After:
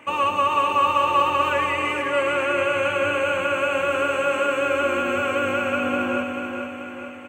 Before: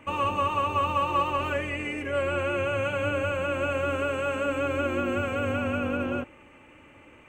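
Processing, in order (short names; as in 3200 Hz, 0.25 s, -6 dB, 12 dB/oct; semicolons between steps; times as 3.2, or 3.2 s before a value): HPF 480 Hz 6 dB/oct; feedback echo 0.437 s, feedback 53%, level -6 dB; on a send at -12.5 dB: reverb RT60 0.55 s, pre-delay 98 ms; on the sum: gain +6.5 dB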